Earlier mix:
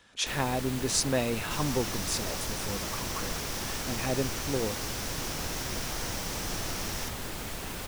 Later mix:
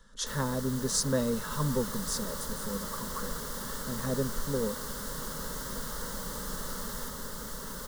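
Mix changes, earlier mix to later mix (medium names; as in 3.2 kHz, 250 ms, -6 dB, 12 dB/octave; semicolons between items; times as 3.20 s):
speech: remove high-pass 270 Hz 6 dB/octave; second sound: add peaking EQ 5.7 kHz -10.5 dB 0.48 oct; master: add static phaser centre 490 Hz, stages 8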